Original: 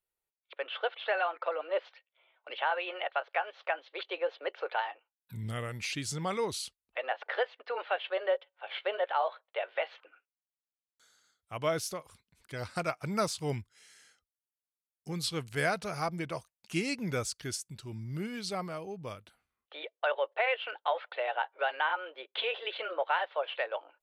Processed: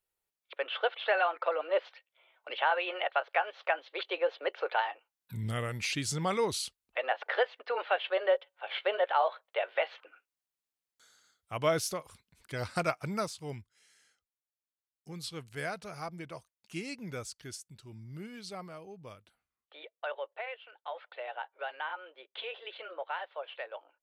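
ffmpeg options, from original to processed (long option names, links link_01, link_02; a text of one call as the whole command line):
ffmpeg -i in.wav -af "volume=11.5dB,afade=type=out:start_time=12.88:duration=0.44:silence=0.334965,afade=type=out:start_time=20.17:duration=0.52:silence=0.334965,afade=type=in:start_time=20.69:duration=0.35:silence=0.354813" out.wav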